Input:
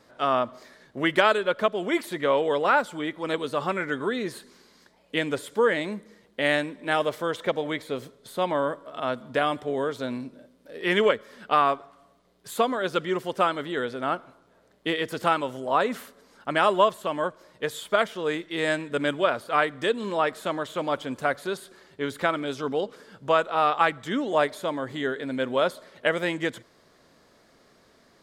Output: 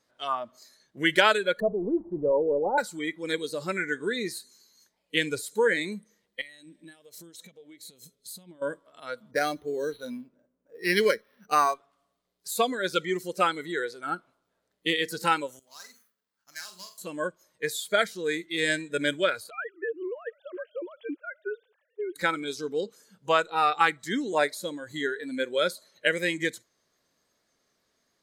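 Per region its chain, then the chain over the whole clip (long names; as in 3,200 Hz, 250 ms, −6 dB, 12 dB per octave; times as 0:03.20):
0:01.60–0:02.78: converter with a step at zero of −30.5 dBFS + Butterworth low-pass 920 Hz + noise gate with hold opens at −29 dBFS, closes at −35 dBFS
0:06.41–0:08.62: parametric band 1,100 Hz −10 dB 1.7 octaves + downward compressor 16 to 1, threshold −38 dBFS
0:09.31–0:11.74: low-pass that shuts in the quiet parts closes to 1,200 Hz, open at −22 dBFS + linearly interpolated sample-rate reduction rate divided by 6×
0:15.59–0:16.98: running median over 15 samples + guitar amp tone stack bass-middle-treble 5-5-5 + flutter between parallel walls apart 7.5 metres, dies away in 0.34 s
0:19.50–0:22.16: three sine waves on the formant tracks + low-shelf EQ 380 Hz +9.5 dB + downward compressor 12 to 1, threshold −26 dBFS
whole clip: high-shelf EQ 2,100 Hz +8.5 dB; noise reduction from a noise print of the clip's start 16 dB; level −2 dB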